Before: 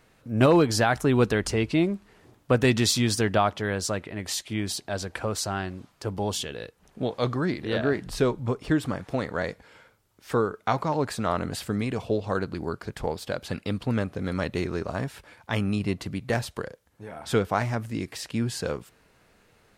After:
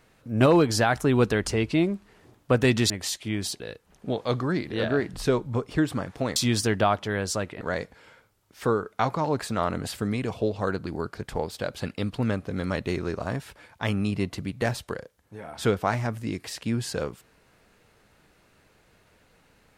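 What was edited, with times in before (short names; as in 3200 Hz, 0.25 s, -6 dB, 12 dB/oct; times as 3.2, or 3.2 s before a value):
2.9–4.15 move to 9.29
4.85–6.53 cut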